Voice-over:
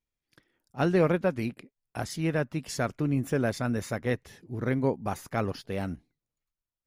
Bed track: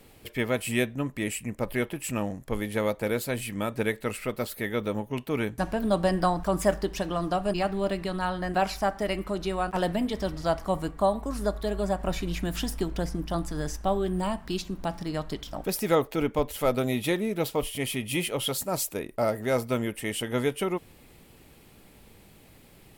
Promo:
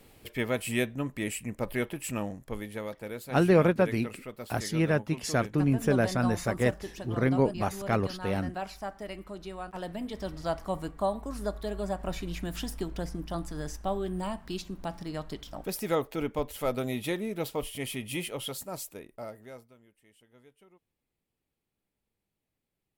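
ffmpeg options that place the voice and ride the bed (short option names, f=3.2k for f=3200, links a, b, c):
-filter_complex "[0:a]adelay=2550,volume=2dB[a];[1:a]volume=3.5dB,afade=t=out:st=2.06:d=0.83:silence=0.375837,afade=t=in:st=9.86:d=0.53:silence=0.501187,afade=t=out:st=18.05:d=1.69:silence=0.0446684[b];[a][b]amix=inputs=2:normalize=0"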